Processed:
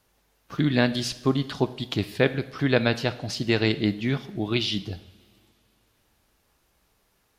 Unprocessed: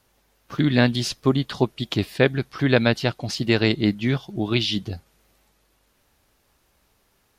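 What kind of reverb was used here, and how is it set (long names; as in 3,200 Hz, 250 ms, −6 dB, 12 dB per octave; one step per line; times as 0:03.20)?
coupled-rooms reverb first 0.77 s, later 2.9 s, from −18 dB, DRR 11.5 dB
level −3 dB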